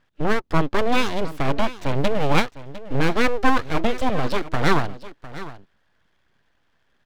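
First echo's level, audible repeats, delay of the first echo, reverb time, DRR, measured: −15.5 dB, 1, 704 ms, no reverb audible, no reverb audible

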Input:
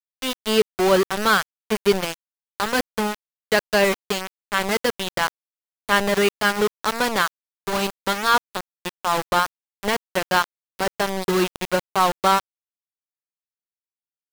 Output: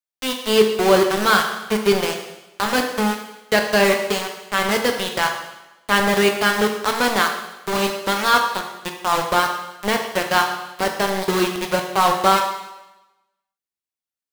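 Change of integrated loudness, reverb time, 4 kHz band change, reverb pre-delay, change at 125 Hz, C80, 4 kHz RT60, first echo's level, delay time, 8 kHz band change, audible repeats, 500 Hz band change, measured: +2.5 dB, 1.0 s, +3.0 dB, 14 ms, +2.0 dB, 8.0 dB, 1.0 s, no echo audible, no echo audible, +2.5 dB, no echo audible, +2.5 dB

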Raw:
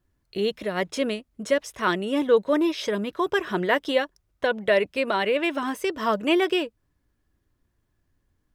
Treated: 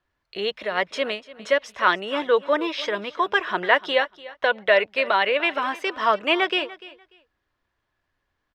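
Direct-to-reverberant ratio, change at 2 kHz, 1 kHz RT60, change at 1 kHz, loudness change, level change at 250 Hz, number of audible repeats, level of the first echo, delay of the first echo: no reverb audible, +6.0 dB, no reverb audible, +5.0 dB, +2.0 dB, −6.5 dB, 2, −18.5 dB, 294 ms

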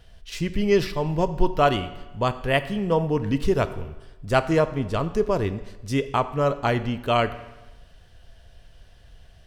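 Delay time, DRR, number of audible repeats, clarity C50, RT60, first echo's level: no echo audible, 12.0 dB, no echo audible, 14.0 dB, 1.1 s, no echo audible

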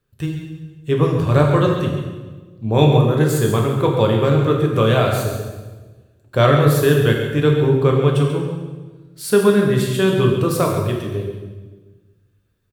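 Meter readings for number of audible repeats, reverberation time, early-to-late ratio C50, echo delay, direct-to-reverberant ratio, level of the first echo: 1, 1.3 s, 3.0 dB, 137 ms, 0.0 dB, −9.5 dB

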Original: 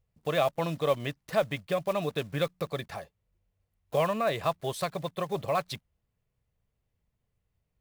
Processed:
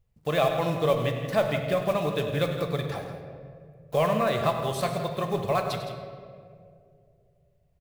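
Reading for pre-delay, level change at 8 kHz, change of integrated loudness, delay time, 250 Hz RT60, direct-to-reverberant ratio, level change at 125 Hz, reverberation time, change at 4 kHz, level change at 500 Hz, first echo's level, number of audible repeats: 5 ms, +2.5 dB, +3.5 dB, 99 ms, 2.6 s, 3.5 dB, +6.5 dB, 2.3 s, +3.0 dB, +3.5 dB, −12.5 dB, 2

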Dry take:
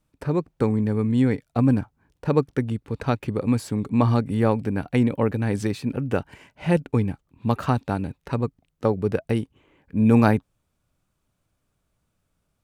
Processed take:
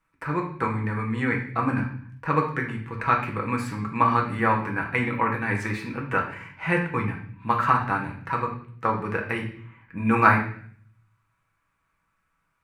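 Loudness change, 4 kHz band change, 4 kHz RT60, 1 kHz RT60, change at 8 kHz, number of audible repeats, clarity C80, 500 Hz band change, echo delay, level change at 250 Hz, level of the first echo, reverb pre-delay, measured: −1.5 dB, −2.0 dB, 0.55 s, 0.50 s, can't be measured, no echo audible, 11.0 dB, −5.5 dB, no echo audible, −6.5 dB, no echo audible, 5 ms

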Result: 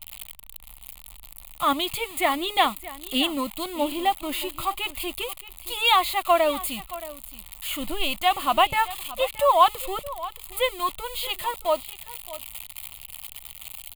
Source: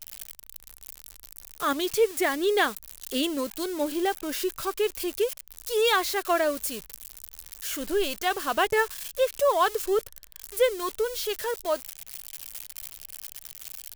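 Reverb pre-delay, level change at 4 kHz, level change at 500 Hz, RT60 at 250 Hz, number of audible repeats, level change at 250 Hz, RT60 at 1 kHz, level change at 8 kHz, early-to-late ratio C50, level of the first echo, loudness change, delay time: no reverb audible, +6.0 dB, −2.0 dB, no reverb audible, 1, 0.0 dB, no reverb audible, −1.0 dB, no reverb audible, −16.5 dB, +2.5 dB, 623 ms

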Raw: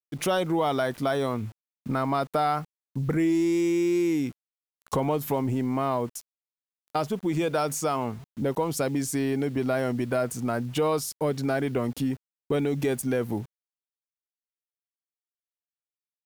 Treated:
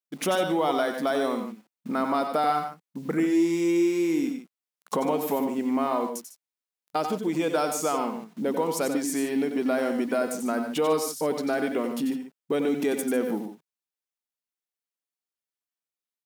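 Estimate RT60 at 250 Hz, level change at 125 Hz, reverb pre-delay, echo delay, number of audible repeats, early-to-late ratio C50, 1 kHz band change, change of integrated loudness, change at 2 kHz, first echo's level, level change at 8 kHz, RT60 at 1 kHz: no reverb audible, −11.0 dB, no reverb audible, 90 ms, 2, no reverb audible, +1.0 dB, +0.5 dB, +1.0 dB, −7.0 dB, +1.0 dB, no reverb audible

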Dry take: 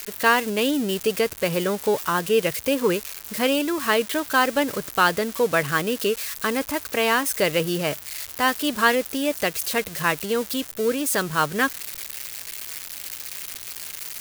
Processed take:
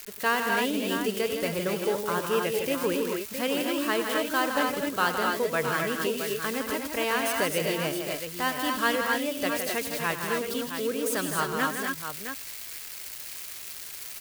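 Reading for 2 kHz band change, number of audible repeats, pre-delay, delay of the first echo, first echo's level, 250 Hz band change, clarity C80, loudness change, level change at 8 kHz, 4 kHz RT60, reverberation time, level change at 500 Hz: −4.5 dB, 4, no reverb audible, 95 ms, −12.5 dB, −4.5 dB, no reverb audible, −4.5 dB, −4.5 dB, no reverb audible, no reverb audible, −5.0 dB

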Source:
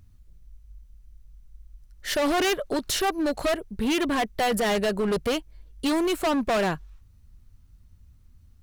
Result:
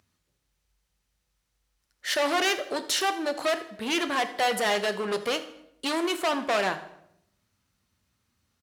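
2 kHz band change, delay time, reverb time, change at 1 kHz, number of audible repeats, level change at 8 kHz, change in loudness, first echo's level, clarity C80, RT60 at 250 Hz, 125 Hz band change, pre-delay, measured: +1.5 dB, 81 ms, 0.75 s, 0.0 dB, 3, −0.5 dB, −1.5 dB, −19.0 dB, 14.5 dB, 0.95 s, below −10 dB, 3 ms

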